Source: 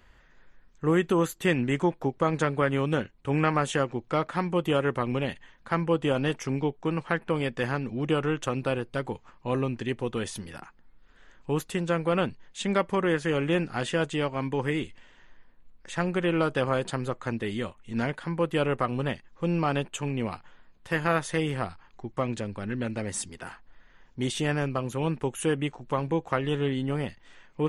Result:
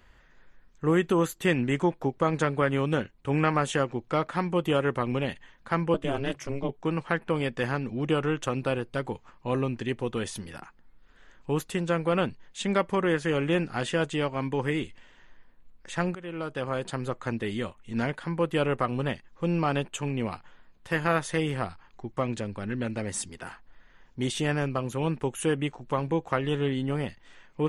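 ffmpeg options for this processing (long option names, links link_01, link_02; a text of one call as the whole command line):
ffmpeg -i in.wav -filter_complex "[0:a]asettb=1/sr,asplit=3[link_01][link_02][link_03];[link_01]atrim=end=5.944[link_04];[link_02]atrim=start=5.94:end=6.69,asetpts=PTS-STARTPTS,afade=type=in:duration=0.004:curve=qsin,afade=type=out:start_time=0.746:duration=0.004:curve=qsin,aeval=exprs='val(0)*sin(2*PI*140*n/s)':channel_layout=same[link_05];[link_03]atrim=start=6.686[link_06];[link_04][link_05]acrossfade=duration=0.004:curve1=hsin:curve2=qsin[link_07];[link_07][link_06]acrossfade=duration=0.004:curve1=qsin:curve2=hsin,asplit=2[link_08][link_09];[link_08]atrim=end=16.15,asetpts=PTS-STARTPTS,afade=type=out:start_time=16.146:duration=0.004:curve=hsin:silence=0.141254[link_10];[link_09]atrim=start=16.15,asetpts=PTS-STARTPTS,afade=type=in:duration=1.03:silence=0.141254[link_11];[link_10][link_11]concat=n=2:v=0:a=1" out.wav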